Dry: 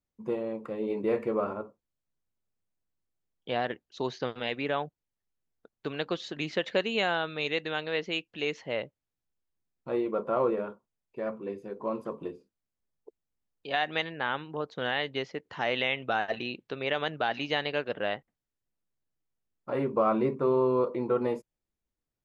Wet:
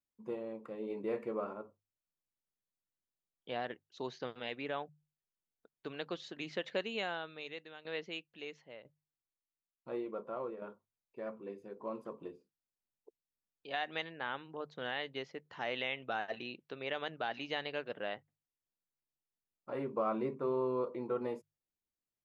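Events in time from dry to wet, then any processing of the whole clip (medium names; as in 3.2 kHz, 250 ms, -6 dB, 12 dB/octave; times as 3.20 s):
6.85–10.62 s: tremolo saw down 1 Hz, depth 80%
whole clip: bass shelf 88 Hz -7 dB; hum notches 50/100/150 Hz; trim -8.5 dB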